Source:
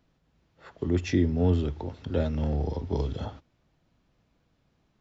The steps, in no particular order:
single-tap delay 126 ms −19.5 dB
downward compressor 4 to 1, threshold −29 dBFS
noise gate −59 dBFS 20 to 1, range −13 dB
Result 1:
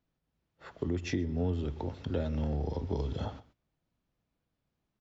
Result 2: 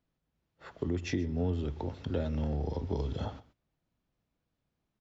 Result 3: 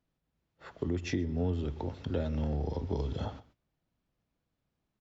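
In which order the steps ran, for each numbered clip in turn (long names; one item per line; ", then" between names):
single-tap delay, then downward compressor, then noise gate
downward compressor, then single-tap delay, then noise gate
single-tap delay, then noise gate, then downward compressor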